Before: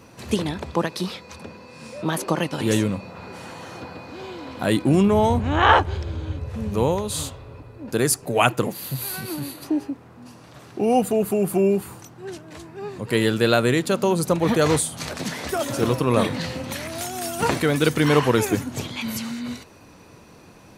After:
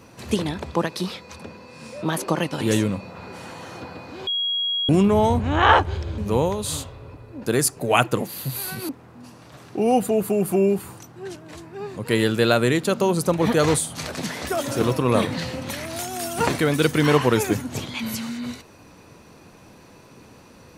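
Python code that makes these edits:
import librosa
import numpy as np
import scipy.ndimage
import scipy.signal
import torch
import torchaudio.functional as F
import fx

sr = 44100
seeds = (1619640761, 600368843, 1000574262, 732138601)

y = fx.edit(x, sr, fx.bleep(start_s=4.27, length_s=0.62, hz=3300.0, db=-21.0),
    fx.cut(start_s=6.18, length_s=0.46),
    fx.cut(start_s=9.35, length_s=0.56), tone=tone)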